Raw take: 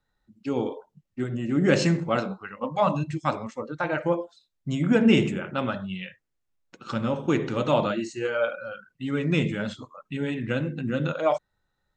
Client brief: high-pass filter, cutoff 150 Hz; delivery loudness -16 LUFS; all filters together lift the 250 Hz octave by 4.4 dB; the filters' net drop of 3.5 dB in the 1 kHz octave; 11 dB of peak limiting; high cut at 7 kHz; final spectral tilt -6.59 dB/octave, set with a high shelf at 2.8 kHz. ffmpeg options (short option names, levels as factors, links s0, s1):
-af "highpass=150,lowpass=7000,equalizer=f=250:t=o:g=6.5,equalizer=f=1000:t=o:g=-4.5,highshelf=f=2800:g=-3.5,volume=3.55,alimiter=limit=0.596:level=0:latency=1"